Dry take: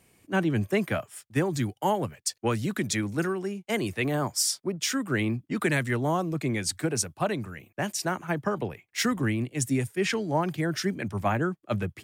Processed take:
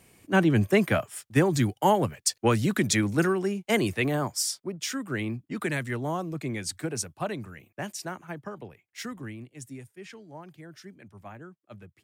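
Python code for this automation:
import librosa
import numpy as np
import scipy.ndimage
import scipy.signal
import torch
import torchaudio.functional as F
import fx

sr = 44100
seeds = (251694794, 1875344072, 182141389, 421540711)

y = fx.gain(x, sr, db=fx.line((3.78, 4.0), (4.57, -4.0), (7.71, -4.0), (8.56, -11.0), (9.11, -11.0), (10.08, -18.0)))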